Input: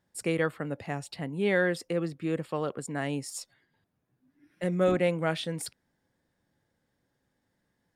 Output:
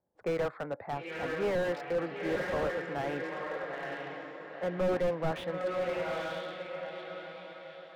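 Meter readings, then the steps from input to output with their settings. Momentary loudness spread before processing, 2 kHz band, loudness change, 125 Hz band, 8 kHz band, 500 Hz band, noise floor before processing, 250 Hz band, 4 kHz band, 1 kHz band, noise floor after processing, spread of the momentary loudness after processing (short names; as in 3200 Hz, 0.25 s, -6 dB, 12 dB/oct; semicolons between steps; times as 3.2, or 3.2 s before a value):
11 LU, -2.5 dB, -4.0 dB, -7.0 dB, under -15 dB, -0.5 dB, -78 dBFS, -6.0 dB, -4.0 dB, +1.5 dB, -51 dBFS, 12 LU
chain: Wiener smoothing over 15 samples; low-pass opened by the level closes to 540 Hz, open at -25.5 dBFS; three-band isolator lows -17 dB, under 510 Hz, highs -22 dB, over 4700 Hz; diffused feedback echo 0.918 s, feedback 42%, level -7 dB; slew limiter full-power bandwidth 12 Hz; gain +6.5 dB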